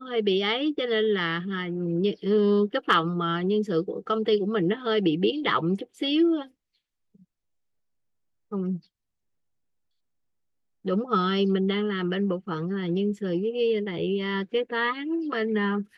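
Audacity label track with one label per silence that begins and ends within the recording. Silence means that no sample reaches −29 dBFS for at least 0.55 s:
6.420000	8.520000	silence
8.760000	10.860000	silence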